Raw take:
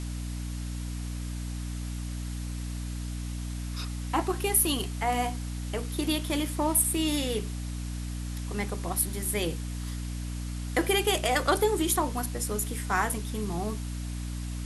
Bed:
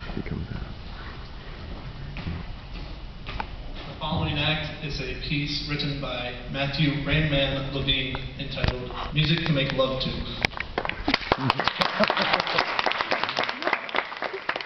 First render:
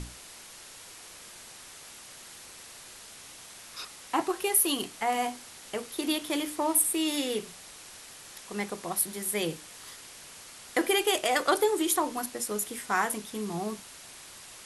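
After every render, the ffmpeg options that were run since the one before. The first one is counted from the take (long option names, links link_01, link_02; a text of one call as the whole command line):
ffmpeg -i in.wav -af "bandreject=frequency=60:width_type=h:width=6,bandreject=frequency=120:width_type=h:width=6,bandreject=frequency=180:width_type=h:width=6,bandreject=frequency=240:width_type=h:width=6,bandreject=frequency=300:width_type=h:width=6" out.wav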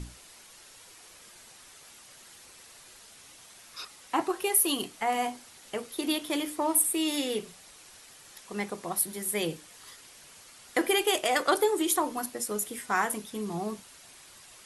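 ffmpeg -i in.wav -af "afftdn=noise_reduction=6:noise_floor=-48" out.wav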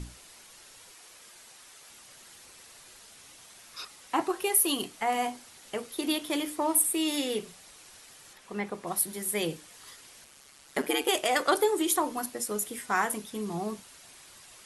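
ffmpeg -i in.wav -filter_complex "[0:a]asettb=1/sr,asplit=3[link_01][link_02][link_03];[link_01]atrim=end=0.914[link_04];[link_02]atrim=start=0.91:end=1.9,asetpts=PTS-STARTPTS,afade=type=in:duration=0.004:curve=qsin,afade=type=out:start_time=0.986:duration=0.004:curve=qsin,lowshelf=frequency=240:gain=-7.5[link_05];[link_03]atrim=start=1.896[link_06];[link_04][link_05]acrossfade=duration=0.004:curve1=hsin:curve2=qsin[link_07];[link_07][link_06]acrossfade=duration=0.004:curve1=qsin:curve2=hsin,asettb=1/sr,asplit=3[link_08][link_09][link_10];[link_08]atrim=end=8.334[link_11];[link_09]atrim=start=8.33:end=8.87,asetpts=PTS-STARTPTS,afade=type=in:duration=0.004:curve=qsin,afade=type=out:start_time=0.536:duration=0.004:curve=qsin,acrossover=split=3200[link_12][link_13];[link_13]acompressor=threshold=-56dB:ratio=4:attack=1:release=60[link_14];[link_12][link_14]amix=inputs=2:normalize=0[link_15];[link_10]atrim=start=8.866[link_16];[link_11][link_15]acrossfade=duration=0.004:curve1=hsin:curve2=qsin[link_17];[link_17][link_16]acrossfade=duration=0.004:curve1=qsin:curve2=hsin,asettb=1/sr,asplit=3[link_18][link_19][link_20];[link_18]atrim=end=10.244[link_21];[link_19]atrim=start=10.24:end=11.09,asetpts=PTS-STARTPTS,afade=type=in:duration=0.004:curve=qsin,afade=type=out:start_time=0.846:duration=0.004:curve=qsin,aeval=exprs='val(0)*sin(2*PI*70*n/s)':channel_layout=same[link_22];[link_20]atrim=start=11.086[link_23];[link_21][link_22]acrossfade=duration=0.004:curve1=hsin:curve2=qsin[link_24];[link_24][link_23]acrossfade=duration=0.004:curve1=qsin:curve2=hsin" out.wav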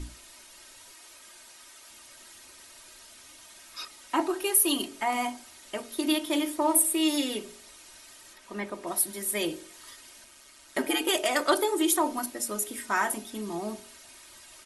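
ffmpeg -i in.wav -af "aecho=1:1:3.2:0.63,bandreject=frequency=46.28:width_type=h:width=4,bandreject=frequency=92.56:width_type=h:width=4,bandreject=frequency=138.84:width_type=h:width=4,bandreject=frequency=185.12:width_type=h:width=4,bandreject=frequency=231.4:width_type=h:width=4,bandreject=frequency=277.68:width_type=h:width=4,bandreject=frequency=323.96:width_type=h:width=4,bandreject=frequency=370.24:width_type=h:width=4,bandreject=frequency=416.52:width_type=h:width=4,bandreject=frequency=462.8:width_type=h:width=4,bandreject=frequency=509.08:width_type=h:width=4,bandreject=frequency=555.36:width_type=h:width=4,bandreject=frequency=601.64:width_type=h:width=4,bandreject=frequency=647.92:width_type=h:width=4,bandreject=frequency=694.2:width_type=h:width=4,bandreject=frequency=740.48:width_type=h:width=4,bandreject=frequency=786.76:width_type=h:width=4,bandreject=frequency=833.04:width_type=h:width=4,bandreject=frequency=879.32:width_type=h:width=4,bandreject=frequency=925.6:width_type=h:width=4" out.wav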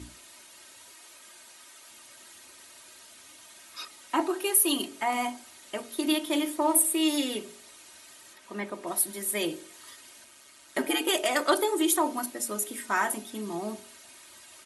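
ffmpeg -i in.wav -af "highpass=96,equalizer=frequency=5300:width_type=o:width=0.26:gain=-3" out.wav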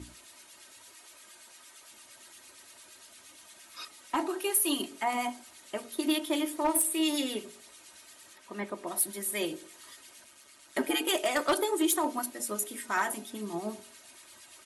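ffmpeg -i in.wav -filter_complex "[0:a]acrossover=split=1700[link_01][link_02];[link_01]aeval=exprs='val(0)*(1-0.5/2+0.5/2*cos(2*PI*8.7*n/s))':channel_layout=same[link_03];[link_02]aeval=exprs='val(0)*(1-0.5/2-0.5/2*cos(2*PI*8.7*n/s))':channel_layout=same[link_04];[link_03][link_04]amix=inputs=2:normalize=0,volume=20dB,asoftclip=hard,volume=-20dB" out.wav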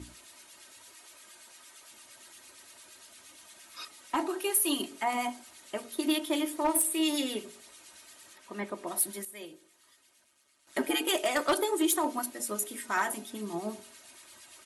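ffmpeg -i in.wav -filter_complex "[0:a]asplit=3[link_01][link_02][link_03];[link_01]atrim=end=9.25,asetpts=PTS-STARTPTS,afade=type=out:start_time=9.04:duration=0.21:curve=log:silence=0.237137[link_04];[link_02]atrim=start=9.25:end=10.67,asetpts=PTS-STARTPTS,volume=-12.5dB[link_05];[link_03]atrim=start=10.67,asetpts=PTS-STARTPTS,afade=type=in:duration=0.21:curve=log:silence=0.237137[link_06];[link_04][link_05][link_06]concat=n=3:v=0:a=1" out.wav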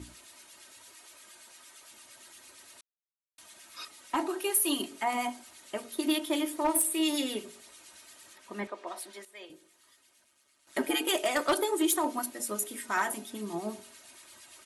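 ffmpeg -i in.wav -filter_complex "[0:a]asettb=1/sr,asplit=3[link_01][link_02][link_03];[link_01]atrim=end=8.674[link_04];[link_02]atrim=start=8.67:end=9.5,asetpts=PTS-STARTPTS,afade=type=in:duration=0.004:curve=qsin,afade=type=out:start_time=0.826:duration=0.004:curve=qsin,highpass=480,lowpass=5000[link_05];[link_03]atrim=start=9.496[link_06];[link_04][link_05]acrossfade=duration=0.004:curve1=hsin:curve2=qsin[link_07];[link_07][link_06]acrossfade=duration=0.004:curve1=qsin:curve2=hsin,asplit=3[link_08][link_09][link_10];[link_08]atrim=end=2.81,asetpts=PTS-STARTPTS,afade=type=out:start_time=2.806:duration=0.004:curve=hsin[link_11];[link_09]atrim=start=2.81:end=3.38,asetpts=PTS-STARTPTS,volume=0[link_12];[link_10]atrim=start=3.38,asetpts=PTS-STARTPTS,afade=type=in:duration=0.004:curve=hsin[link_13];[link_11][link_12][link_13]concat=n=3:v=0:a=1" out.wav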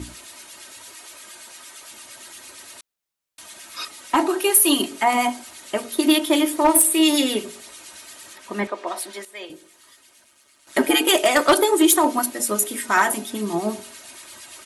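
ffmpeg -i in.wav -af "volume=11.5dB" out.wav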